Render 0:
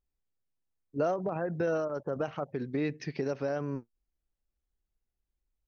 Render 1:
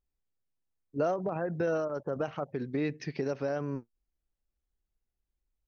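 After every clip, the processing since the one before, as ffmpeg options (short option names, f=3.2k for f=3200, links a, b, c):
-af anull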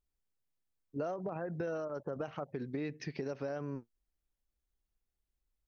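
-af "acompressor=threshold=-35dB:ratio=2.5,volume=-1.5dB"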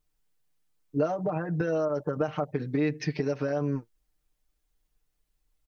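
-af "aecho=1:1:6.6:0.94,volume=6.5dB"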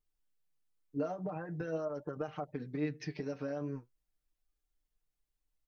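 -af "flanger=delay=2.4:depth=8.6:regen=65:speed=0.44:shape=sinusoidal,volume=-5.5dB"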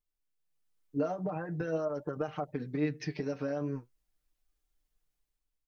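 -af "dynaudnorm=f=160:g=7:m=9dB,volume=-5dB"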